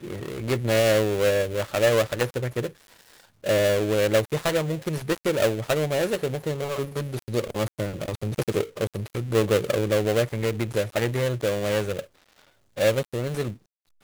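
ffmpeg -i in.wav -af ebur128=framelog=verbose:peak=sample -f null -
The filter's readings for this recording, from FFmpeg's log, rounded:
Integrated loudness:
  I:         -25.1 LUFS
  Threshold: -35.5 LUFS
Loudness range:
  LRA:         3.6 LU
  Threshold: -45.6 LUFS
  LRA low:   -27.7 LUFS
  LRA high:  -24.1 LUFS
Sample peak:
  Peak:       -7.6 dBFS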